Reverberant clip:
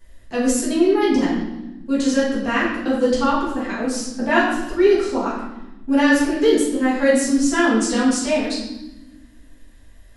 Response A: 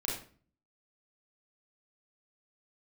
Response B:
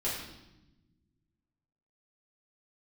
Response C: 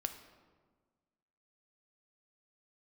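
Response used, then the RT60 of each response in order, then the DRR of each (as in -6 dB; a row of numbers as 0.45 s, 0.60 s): B; 0.40 s, 0.95 s, 1.5 s; -4.5 dB, -8.5 dB, 7.0 dB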